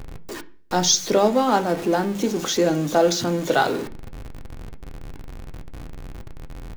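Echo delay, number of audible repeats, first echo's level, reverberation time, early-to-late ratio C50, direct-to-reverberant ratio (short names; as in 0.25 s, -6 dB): none, none, none, 0.50 s, 18.0 dB, 6.5 dB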